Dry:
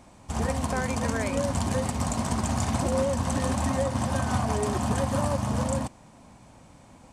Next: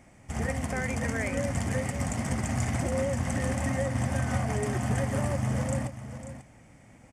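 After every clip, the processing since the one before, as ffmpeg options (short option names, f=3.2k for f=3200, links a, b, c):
-filter_complex "[0:a]equalizer=f=125:t=o:w=0.33:g=6,equalizer=f=1k:t=o:w=0.33:g=-9,equalizer=f=2k:t=o:w=0.33:g=11,equalizer=f=4k:t=o:w=0.33:g=-11,asplit=2[a][b];[b]aecho=0:1:542:0.266[c];[a][c]amix=inputs=2:normalize=0,volume=-3.5dB"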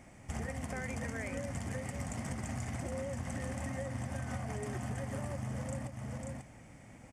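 -af "acompressor=threshold=-36dB:ratio=6"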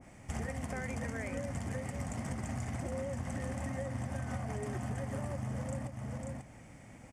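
-af "adynamicequalizer=threshold=0.00158:dfrequency=1600:dqfactor=0.7:tfrequency=1600:tqfactor=0.7:attack=5:release=100:ratio=0.375:range=1.5:mode=cutabove:tftype=highshelf,volume=1dB"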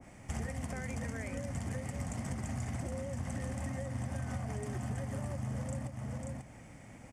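-filter_complex "[0:a]acrossover=split=220|3000[a][b][c];[b]acompressor=threshold=-49dB:ratio=1.5[d];[a][d][c]amix=inputs=3:normalize=0,volume=1dB"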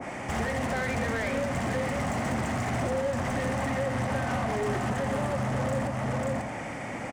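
-filter_complex "[0:a]asplit=2[a][b];[b]highpass=f=720:p=1,volume=27dB,asoftclip=type=tanh:threshold=-25.5dB[c];[a][c]amix=inputs=2:normalize=0,lowpass=f=1.5k:p=1,volume=-6dB,aecho=1:1:84:0.376,volume=5dB"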